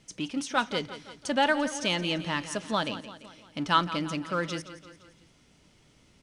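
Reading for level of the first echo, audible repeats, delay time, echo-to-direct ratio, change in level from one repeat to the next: −13.5 dB, 4, 171 ms, −12.0 dB, −5.5 dB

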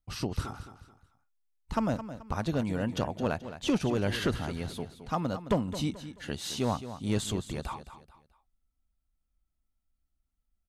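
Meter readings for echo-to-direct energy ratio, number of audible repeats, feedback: −11.5 dB, 3, 34%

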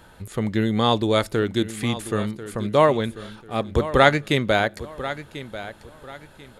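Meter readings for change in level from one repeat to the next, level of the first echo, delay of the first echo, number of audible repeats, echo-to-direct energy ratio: −11.0 dB, −14.0 dB, 1,041 ms, 2, −13.5 dB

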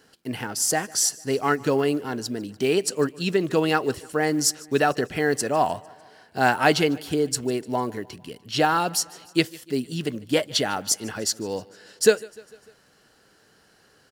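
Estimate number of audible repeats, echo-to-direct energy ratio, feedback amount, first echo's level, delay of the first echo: 3, −21.5 dB, 58%, −23.0 dB, 150 ms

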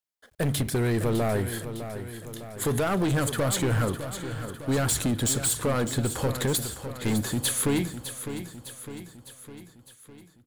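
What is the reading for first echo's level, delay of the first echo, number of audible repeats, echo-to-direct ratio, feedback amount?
−10.5 dB, 606 ms, 5, −9.0 dB, 56%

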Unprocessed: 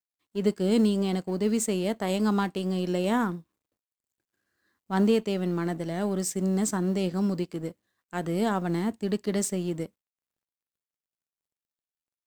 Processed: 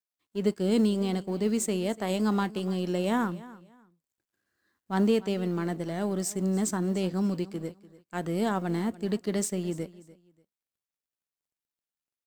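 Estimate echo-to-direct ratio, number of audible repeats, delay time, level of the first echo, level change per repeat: −19.0 dB, 2, 293 ms, −19.0 dB, −12.5 dB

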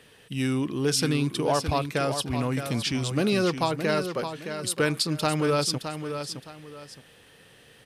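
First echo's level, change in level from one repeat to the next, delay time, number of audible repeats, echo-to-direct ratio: −8.5 dB, −11.0 dB, 616 ms, 2, −8.0 dB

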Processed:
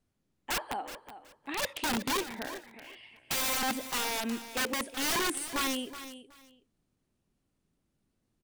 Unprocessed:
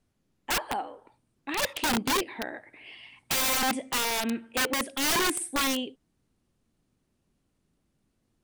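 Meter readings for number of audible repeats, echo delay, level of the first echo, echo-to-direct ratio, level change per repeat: 2, 372 ms, −13.0 dB, −13.0 dB, −13.5 dB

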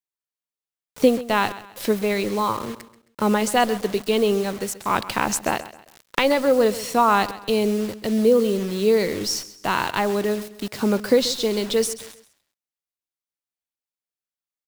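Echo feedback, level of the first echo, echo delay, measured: 36%, −16.0 dB, 133 ms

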